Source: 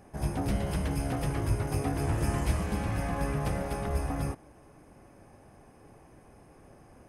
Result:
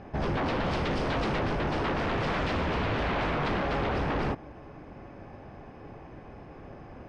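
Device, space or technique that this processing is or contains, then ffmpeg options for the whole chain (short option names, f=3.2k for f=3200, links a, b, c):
synthesiser wavefolder: -filter_complex "[0:a]aeval=exprs='0.0237*(abs(mod(val(0)/0.0237+3,4)-2)-1)':c=same,lowpass=f=4.2k:w=0.5412,lowpass=f=4.2k:w=1.3066,asettb=1/sr,asplit=3[a][b][c];[a]atrim=end=0.644[d];[b]atrim=start=0.64:end=1.39,asetpts=PTS-STARTPTS,afade=t=in:d=0.004:c=qsin,afade=t=out:st=0.746:d=0.004:c=qsin,bass=f=250:g=0,treble=f=4k:g=5[e];[c]atrim=start=1.386[f];[d][e]acrossfade=d=0.004:c1=hsin:c2=qsin[g];[g][f]acrossfade=d=0.004:c1=qsin:c2=hsin,volume=9dB"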